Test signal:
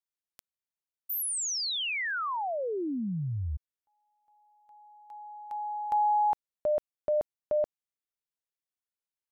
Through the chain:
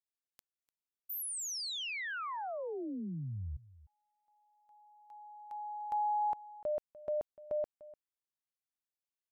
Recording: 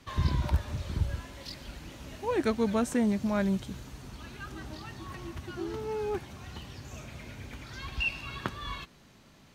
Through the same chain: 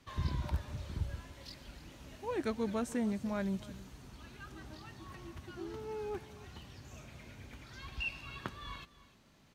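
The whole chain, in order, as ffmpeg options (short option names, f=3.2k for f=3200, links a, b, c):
-af "aecho=1:1:297:0.119,volume=-7.5dB"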